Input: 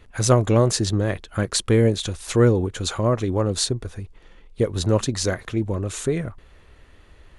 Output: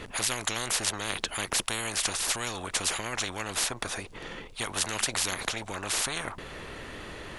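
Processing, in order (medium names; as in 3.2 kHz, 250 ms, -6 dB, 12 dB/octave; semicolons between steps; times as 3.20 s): spectrum-flattening compressor 10:1; trim -2.5 dB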